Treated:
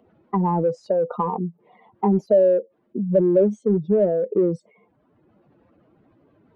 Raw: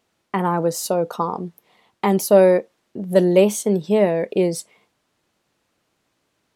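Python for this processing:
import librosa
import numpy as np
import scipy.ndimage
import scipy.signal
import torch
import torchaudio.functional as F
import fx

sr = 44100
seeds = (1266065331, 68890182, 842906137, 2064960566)

p1 = fx.spec_expand(x, sr, power=2.2)
p2 = np.clip(10.0 ** (22.0 / 20.0) * p1, -1.0, 1.0) / 10.0 ** (22.0 / 20.0)
p3 = p1 + F.gain(torch.from_numpy(p2), -12.0).numpy()
p4 = fx.spacing_loss(p3, sr, db_at_10k=42)
y = fx.band_squash(p4, sr, depth_pct=40)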